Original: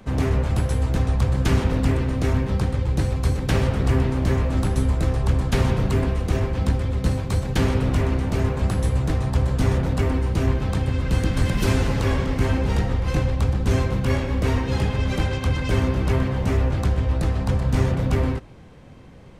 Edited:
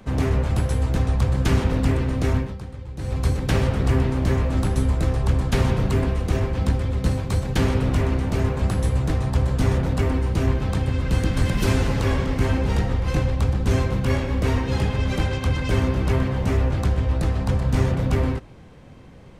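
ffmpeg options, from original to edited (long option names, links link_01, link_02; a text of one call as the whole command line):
ffmpeg -i in.wav -filter_complex "[0:a]asplit=3[link_01][link_02][link_03];[link_01]atrim=end=2.55,asetpts=PTS-STARTPTS,afade=type=out:start_time=2.36:duration=0.19:silence=0.237137[link_04];[link_02]atrim=start=2.55:end=2.98,asetpts=PTS-STARTPTS,volume=-12.5dB[link_05];[link_03]atrim=start=2.98,asetpts=PTS-STARTPTS,afade=type=in:duration=0.19:silence=0.237137[link_06];[link_04][link_05][link_06]concat=n=3:v=0:a=1" out.wav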